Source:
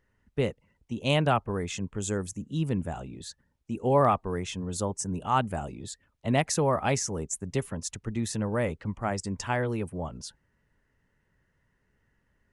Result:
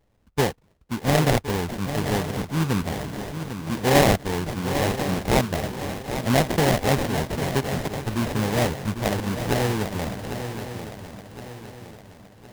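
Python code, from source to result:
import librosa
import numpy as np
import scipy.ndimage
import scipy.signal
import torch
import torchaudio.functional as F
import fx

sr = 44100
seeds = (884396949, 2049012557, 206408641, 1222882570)

y = fx.sample_hold(x, sr, seeds[0], rate_hz=1300.0, jitter_pct=20)
y = fx.echo_swing(y, sr, ms=1065, ratio=3, feedback_pct=41, wet_db=-9.5)
y = F.gain(torch.from_numpy(y), 5.0).numpy()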